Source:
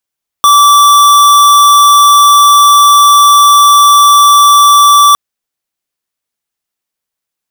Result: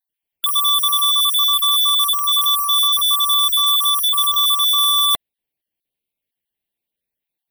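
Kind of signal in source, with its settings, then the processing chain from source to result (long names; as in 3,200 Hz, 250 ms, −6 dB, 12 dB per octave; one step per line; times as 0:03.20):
tone square 1,160 Hz −4 dBFS 4.71 s
time-frequency cells dropped at random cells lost 28%
parametric band 5,300 Hz −10.5 dB 0.61 octaves
phaser with its sweep stopped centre 3,000 Hz, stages 4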